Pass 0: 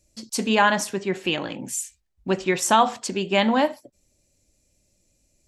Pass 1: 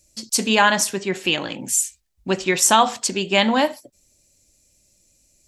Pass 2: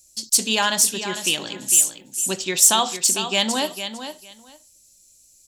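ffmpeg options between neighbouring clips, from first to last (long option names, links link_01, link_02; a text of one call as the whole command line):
ffmpeg -i in.wav -af "highshelf=frequency=2800:gain=9,volume=1dB" out.wav
ffmpeg -i in.wav -af "aecho=1:1:453|906:0.316|0.0538,aexciter=amount=2.7:drive=7.4:freq=3000,volume=-6.5dB" out.wav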